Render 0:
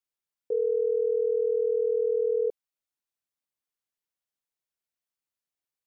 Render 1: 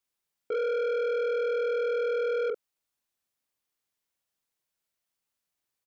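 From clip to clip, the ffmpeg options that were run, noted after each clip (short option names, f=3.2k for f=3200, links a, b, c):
-filter_complex "[0:a]asplit=2[a][b];[b]adelay=44,volume=-5.5dB[c];[a][c]amix=inputs=2:normalize=0,asoftclip=type=tanh:threshold=-31.5dB,volume=5dB"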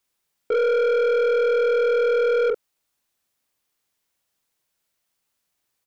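-af "aeval=exprs='0.0501*(cos(1*acos(clip(val(0)/0.0501,-1,1)))-cos(1*PI/2))+0.00141*(cos(2*acos(clip(val(0)/0.0501,-1,1)))-cos(2*PI/2))+0.000316*(cos(6*acos(clip(val(0)/0.0501,-1,1)))-cos(6*PI/2))+0.000398*(cos(8*acos(clip(val(0)/0.0501,-1,1)))-cos(8*PI/2))':c=same,volume=8.5dB"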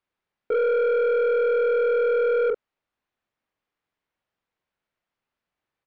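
-af "lowpass=2.3k,volume=-1.5dB"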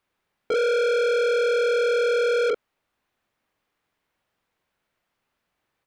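-af "asoftclip=type=tanh:threshold=-28.5dB,volume=8dB"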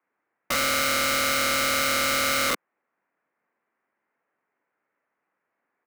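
-af "highpass=f=300:t=q:w=0.5412,highpass=f=300:t=q:w=1.307,lowpass=f=2.2k:t=q:w=0.5176,lowpass=f=2.2k:t=q:w=0.7071,lowpass=f=2.2k:t=q:w=1.932,afreqshift=-71,equalizer=f=530:w=0.34:g=-3.5,aeval=exprs='(mod(15*val(0)+1,2)-1)/15':c=same,volume=3.5dB"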